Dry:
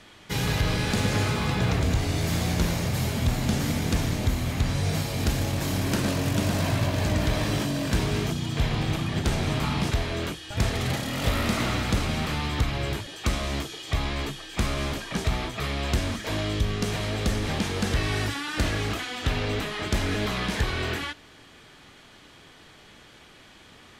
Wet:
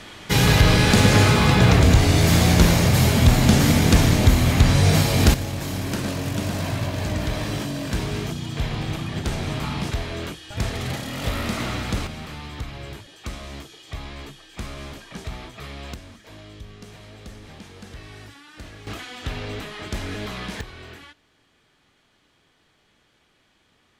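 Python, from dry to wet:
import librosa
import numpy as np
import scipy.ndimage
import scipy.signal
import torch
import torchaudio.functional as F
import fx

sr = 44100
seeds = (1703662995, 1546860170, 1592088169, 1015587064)

y = fx.gain(x, sr, db=fx.steps((0.0, 9.5), (5.34, -1.0), (12.07, -7.5), (15.94, -15.0), (18.87, -4.0), (20.61, -12.5)))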